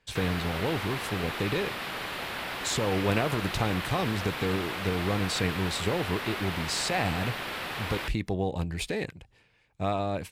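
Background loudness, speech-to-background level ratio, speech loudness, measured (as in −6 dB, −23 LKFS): −34.0 LKFS, 3.0 dB, −31.0 LKFS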